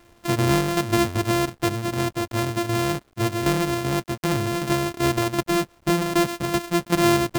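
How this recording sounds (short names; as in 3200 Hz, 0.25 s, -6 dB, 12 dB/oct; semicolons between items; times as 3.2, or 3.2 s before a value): a buzz of ramps at a fixed pitch in blocks of 128 samples; tremolo saw down 2.6 Hz, depth 60%; a quantiser's noise floor 10-bit, dither none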